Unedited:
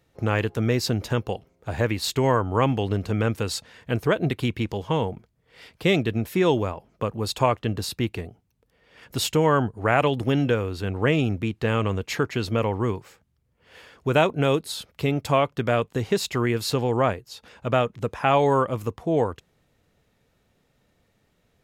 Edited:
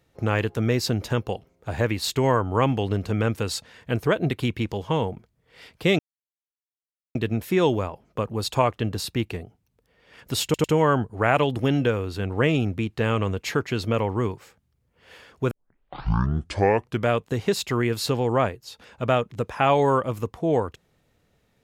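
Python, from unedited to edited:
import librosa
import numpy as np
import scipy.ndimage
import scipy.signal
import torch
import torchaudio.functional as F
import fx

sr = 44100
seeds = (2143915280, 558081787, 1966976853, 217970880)

y = fx.edit(x, sr, fx.insert_silence(at_s=5.99, length_s=1.16),
    fx.stutter(start_s=9.28, slice_s=0.1, count=3),
    fx.tape_start(start_s=14.15, length_s=1.57), tone=tone)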